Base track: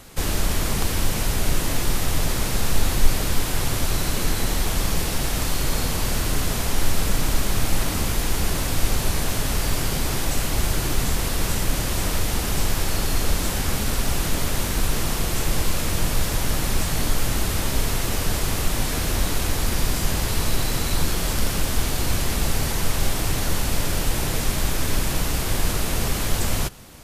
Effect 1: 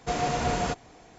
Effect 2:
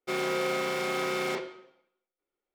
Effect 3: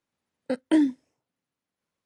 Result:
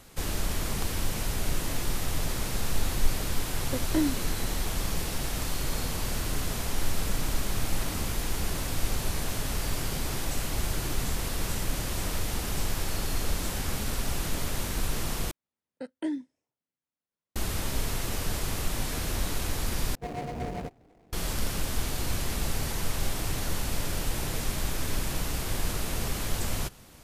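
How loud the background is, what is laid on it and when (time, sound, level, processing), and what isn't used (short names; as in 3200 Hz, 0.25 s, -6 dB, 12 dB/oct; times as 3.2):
base track -7.5 dB
3.23 add 3 -6 dB
15.31 replace with 3 -11 dB
19.95 replace with 1 -4.5 dB + median filter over 41 samples
not used: 2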